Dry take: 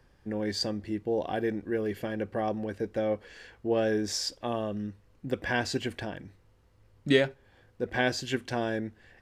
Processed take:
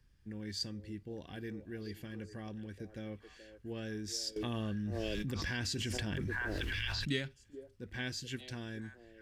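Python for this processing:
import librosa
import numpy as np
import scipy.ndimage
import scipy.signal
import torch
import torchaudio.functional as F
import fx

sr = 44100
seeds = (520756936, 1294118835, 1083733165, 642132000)

y = fx.tone_stack(x, sr, knobs='6-0-2')
y = fx.echo_stepped(y, sr, ms=427, hz=460.0, octaves=1.4, feedback_pct=70, wet_db=-8.0)
y = fx.env_flatten(y, sr, amount_pct=100, at=(4.36, 7.1))
y = y * 10.0 ** (8.5 / 20.0)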